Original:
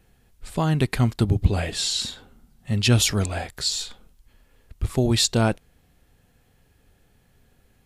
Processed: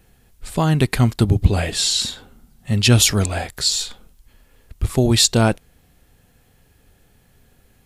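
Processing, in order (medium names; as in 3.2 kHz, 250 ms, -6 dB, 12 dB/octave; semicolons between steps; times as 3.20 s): treble shelf 7.1 kHz +4.5 dB; trim +4.5 dB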